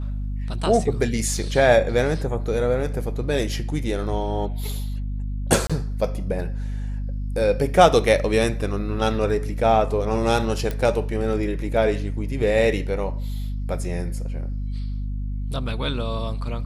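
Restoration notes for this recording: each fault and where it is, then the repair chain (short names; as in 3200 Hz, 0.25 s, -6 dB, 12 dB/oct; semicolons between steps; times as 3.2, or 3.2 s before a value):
hum 50 Hz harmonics 5 -27 dBFS
5.67–5.7 gap 26 ms
10.71 pop -14 dBFS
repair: de-click; de-hum 50 Hz, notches 5; interpolate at 5.67, 26 ms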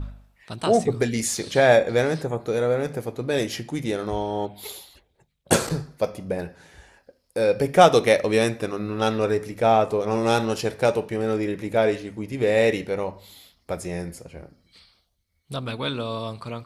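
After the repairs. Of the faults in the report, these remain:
none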